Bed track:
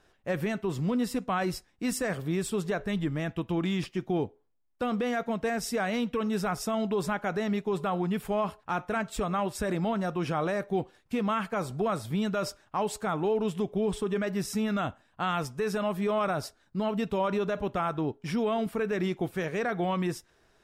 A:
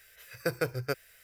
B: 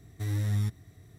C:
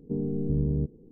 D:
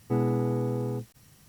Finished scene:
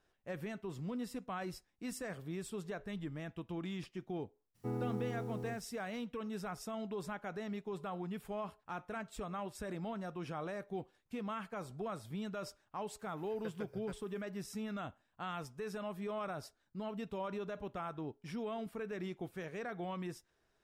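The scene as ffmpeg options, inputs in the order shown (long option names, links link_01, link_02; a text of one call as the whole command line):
ffmpeg -i bed.wav -i cue0.wav -i cue1.wav -i cue2.wav -i cue3.wav -filter_complex "[0:a]volume=-12.5dB[link_01];[4:a]agate=range=-33dB:threshold=-53dB:ratio=3:release=100:detection=peak[link_02];[1:a]acrossover=split=2900[link_03][link_04];[link_04]acompressor=threshold=-54dB:ratio=4:attack=1:release=60[link_05];[link_03][link_05]amix=inputs=2:normalize=0[link_06];[link_02]atrim=end=1.48,asetpts=PTS-STARTPTS,volume=-12.5dB,afade=type=in:duration=0.004:curve=hsin,afade=type=out:start_time=1.476:duration=0.004:curve=hsin,adelay=4540[link_07];[link_06]atrim=end=1.23,asetpts=PTS-STARTPTS,volume=-17.5dB,afade=type=in:duration=0.004:curve=hsin,afade=type=out:start_time=1.226:duration=0.004:curve=hsin,adelay=12990[link_08];[link_01][link_07][link_08]amix=inputs=3:normalize=0" out.wav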